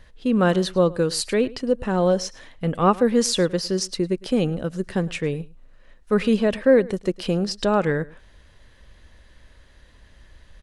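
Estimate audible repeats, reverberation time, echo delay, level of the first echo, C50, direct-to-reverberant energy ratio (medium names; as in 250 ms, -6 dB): 1, no reverb, 107 ms, -21.5 dB, no reverb, no reverb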